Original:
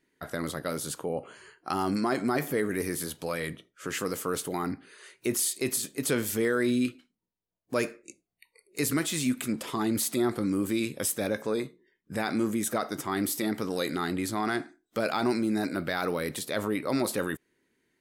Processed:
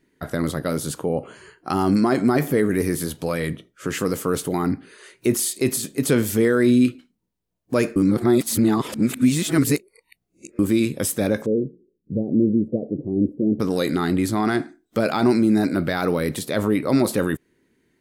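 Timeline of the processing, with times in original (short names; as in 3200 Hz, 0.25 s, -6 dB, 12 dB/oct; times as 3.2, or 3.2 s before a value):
7.96–10.59 reverse
11.46–13.6 elliptic low-pass 530 Hz, stop band 60 dB
whole clip: low shelf 410 Hz +9 dB; gain +4 dB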